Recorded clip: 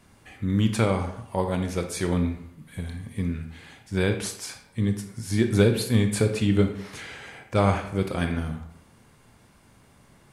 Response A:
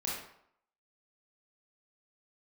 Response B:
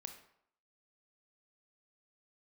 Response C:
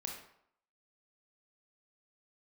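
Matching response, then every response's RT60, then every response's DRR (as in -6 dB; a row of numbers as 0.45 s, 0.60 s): B; 0.70 s, 0.70 s, 0.70 s; -5.5 dB, 5.5 dB, 0.5 dB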